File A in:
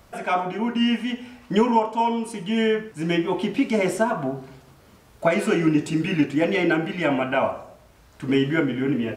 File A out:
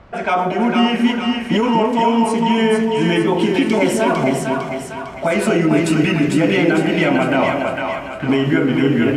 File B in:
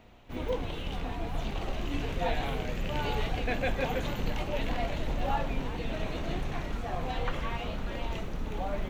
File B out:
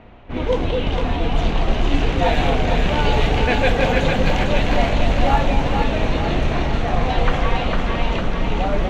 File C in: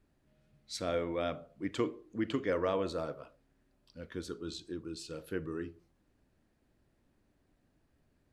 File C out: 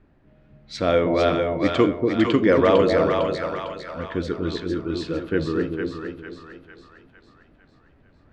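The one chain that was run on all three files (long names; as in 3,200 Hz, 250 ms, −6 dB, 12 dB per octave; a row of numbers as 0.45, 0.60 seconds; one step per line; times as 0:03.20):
low-pass that shuts in the quiet parts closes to 2,300 Hz, open at −22 dBFS
brickwall limiter −17 dBFS
echo with a time of its own for lows and highs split 730 Hz, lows 237 ms, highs 453 ms, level −3.5 dB
normalise the peak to −3 dBFS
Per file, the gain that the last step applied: +8.5, +12.0, +14.0 decibels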